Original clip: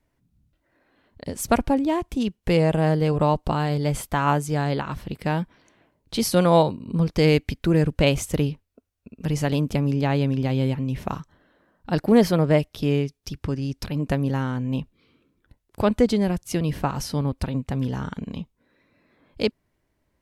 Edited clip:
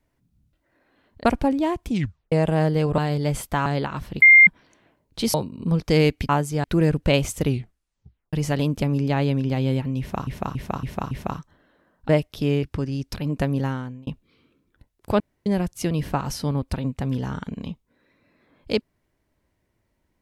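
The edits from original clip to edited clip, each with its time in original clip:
0:01.25–0:01.51: remove
0:02.15: tape stop 0.43 s
0:03.24–0:03.58: remove
0:04.26–0:04.61: move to 0:07.57
0:05.17–0:05.42: beep over 2,110 Hz −7 dBFS
0:06.29–0:06.62: remove
0:08.38: tape stop 0.88 s
0:10.92–0:11.20: repeat, 5 plays
0:11.90–0:12.50: remove
0:13.04–0:13.33: remove
0:14.35–0:14.77: fade out
0:15.90–0:16.16: fill with room tone

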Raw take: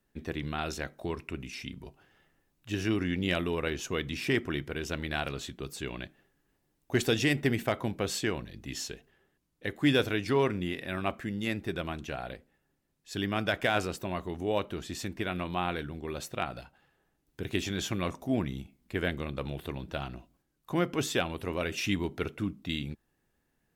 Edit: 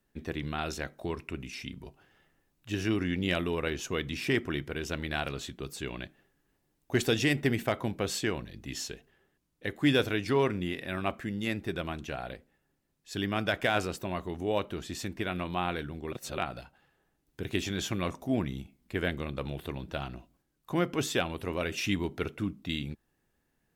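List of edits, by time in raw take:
0:16.12–0:16.38: reverse

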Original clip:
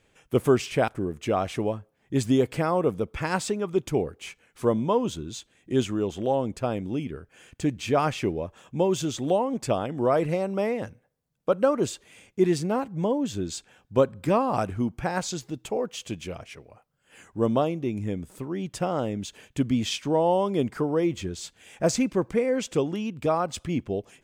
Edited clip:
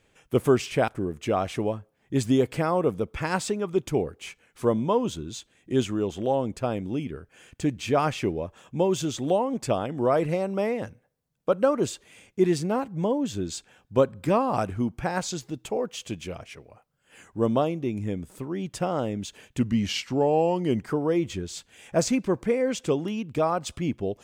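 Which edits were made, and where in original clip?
0:19.59–0:20.71: play speed 90%

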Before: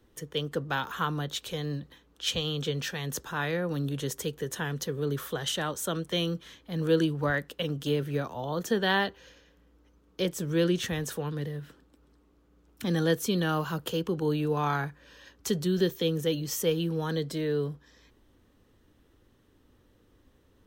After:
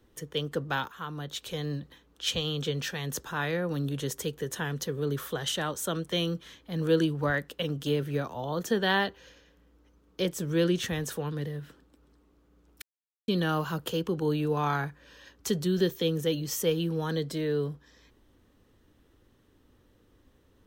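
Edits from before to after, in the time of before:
0:00.88–0:01.60: fade in linear, from −14 dB
0:12.82–0:13.28: silence

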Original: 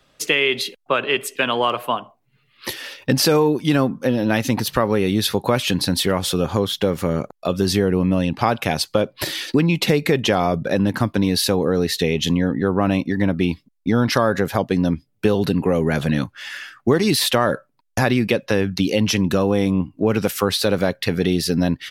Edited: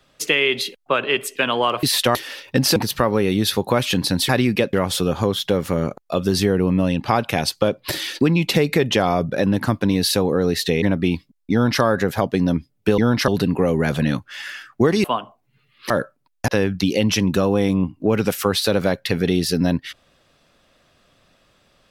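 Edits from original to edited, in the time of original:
0:01.83–0:02.69: swap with 0:17.11–0:17.43
0:03.30–0:04.53: remove
0:12.15–0:13.19: remove
0:13.89–0:14.19: duplicate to 0:15.35
0:18.01–0:18.45: move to 0:06.06

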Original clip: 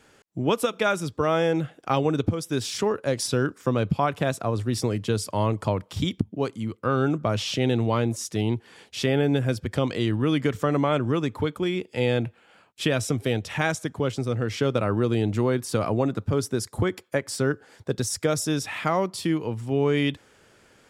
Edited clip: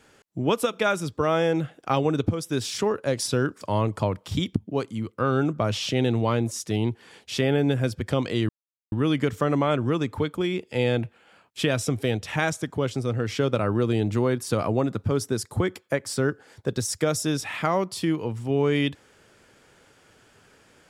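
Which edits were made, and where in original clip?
0:03.61–0:05.26: remove
0:10.14: splice in silence 0.43 s

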